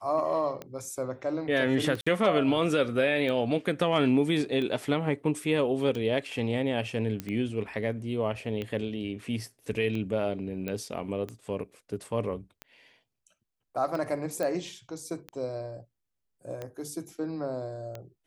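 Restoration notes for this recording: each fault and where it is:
tick 45 rpm -23 dBFS
2.01–2.06 s: dropout 55 ms
7.20 s: pop -18 dBFS
10.68 s: pop -20 dBFS
14.43 s: pop -18 dBFS

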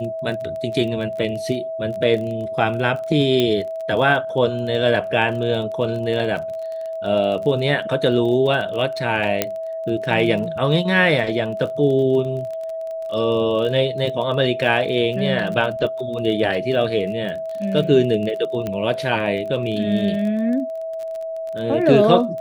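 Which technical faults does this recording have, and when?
crackle 25 per s -28 dBFS
whine 650 Hz -25 dBFS
3.40 s: pop -7 dBFS
9.42 s: pop -2 dBFS
18.67 s: pop -13 dBFS

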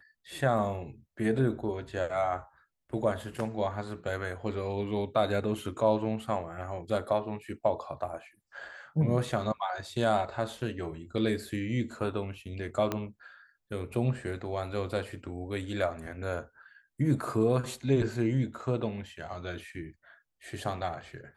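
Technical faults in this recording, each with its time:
12.92 s: pop -16 dBFS

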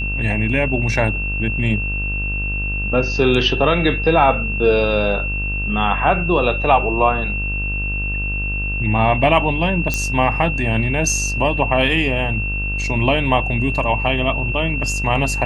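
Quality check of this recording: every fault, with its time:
buzz 50 Hz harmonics 33 -24 dBFS
whine 2.7 kHz -23 dBFS
9.94 s: pop -6 dBFS

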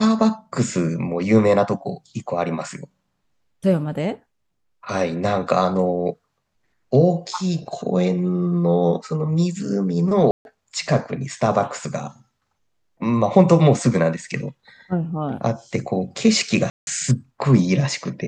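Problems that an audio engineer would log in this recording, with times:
10.31–10.45 s: dropout 141 ms
16.70–16.87 s: dropout 171 ms

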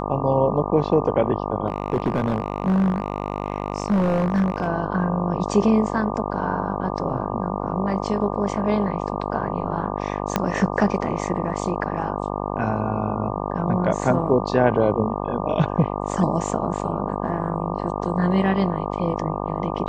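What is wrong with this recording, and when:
buzz 50 Hz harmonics 24 -27 dBFS
1.68–4.68 s: clipped -15.5 dBFS
10.36 s: pop -5 dBFS

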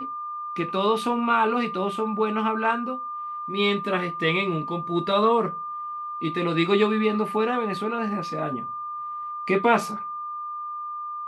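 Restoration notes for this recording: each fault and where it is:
whine 1.2 kHz -30 dBFS

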